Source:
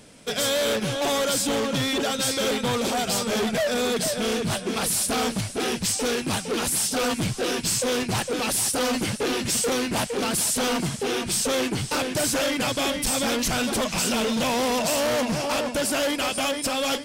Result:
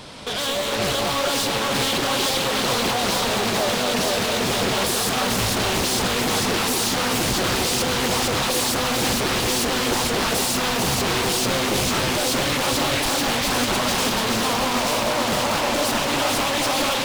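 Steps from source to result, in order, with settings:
sub-octave generator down 1 octave, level −5 dB
octave-band graphic EQ 1,000/4,000/8,000 Hz +11/+10/−5 dB
brickwall limiter −23.5 dBFS, peak gain reduction 14.5 dB
automatic gain control gain up to 13 dB
gain into a clipping stage and back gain 29.5 dB
delay that swaps between a low-pass and a high-pass 220 ms, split 920 Hz, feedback 85%, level −3 dB
on a send at −13 dB: convolution reverb RT60 0.45 s, pre-delay 3 ms
on the sum: highs frequency-modulated by the lows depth 0.8 ms
level +6 dB

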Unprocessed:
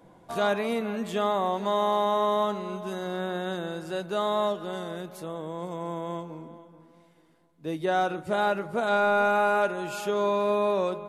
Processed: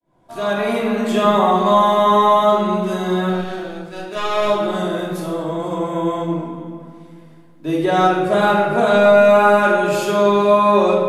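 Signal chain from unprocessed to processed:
fade in at the beginning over 0.95 s
0:03.29–0:04.48: power curve on the samples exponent 2
rectangular room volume 1,000 cubic metres, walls mixed, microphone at 2.9 metres
level +6 dB

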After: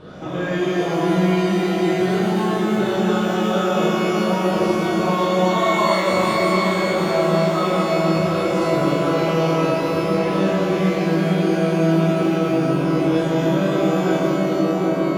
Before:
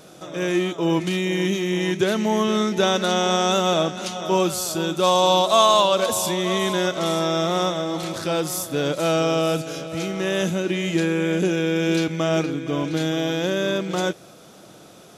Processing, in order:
rippled gain that drifts along the octave scale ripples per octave 0.64, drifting +2.9 Hz, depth 7 dB
low-pass filter 2,500 Hz 12 dB per octave
low-shelf EQ 150 Hz +10.5 dB
feedback echo with a band-pass in the loop 766 ms, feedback 79%, band-pass 310 Hz, level −3 dB
downward compressor 5 to 1, threshold −27 dBFS, peak gain reduction 14.5 dB
reverb with rising layers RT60 2.7 s, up +12 semitones, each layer −8 dB, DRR −9 dB

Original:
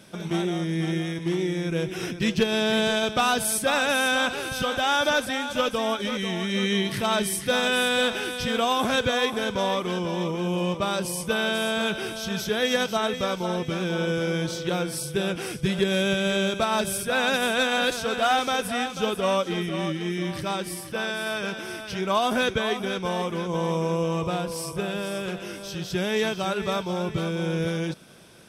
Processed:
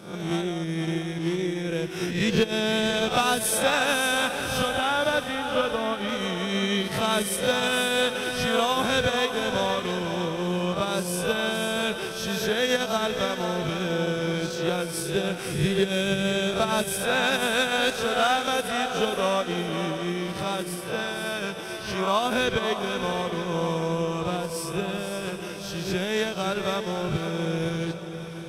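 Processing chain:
peak hold with a rise ahead of every peak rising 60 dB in 0.62 s
transient designer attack +2 dB, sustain −10 dB
0:04.69–0:06.09: high-frequency loss of the air 170 metres
feedback delay with all-pass diffusion 617 ms, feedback 49%, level −9.5 dB
level −2 dB

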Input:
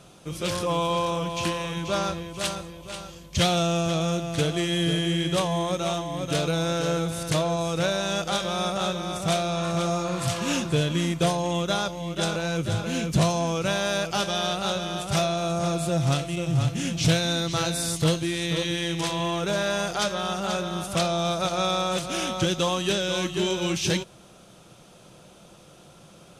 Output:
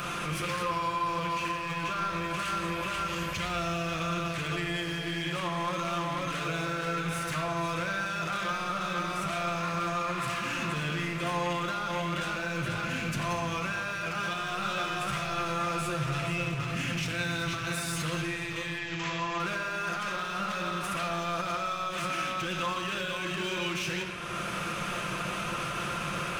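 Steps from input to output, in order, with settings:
flat-topped bell 1,700 Hz +13 dB
upward compression, threshold −27 dBFS
brickwall limiter −27.5 dBFS, peak gain reduction 24 dB
hard clipping −33.5 dBFS, distortion −13 dB
0:14.38–0:16.18: double-tracking delay 14 ms −4.5 dB
0:18.78–0:19.40: linear-phase brick-wall low-pass 7,800 Hz
convolution reverb RT60 3.0 s, pre-delay 6 ms, DRR 1.5 dB
level +2.5 dB

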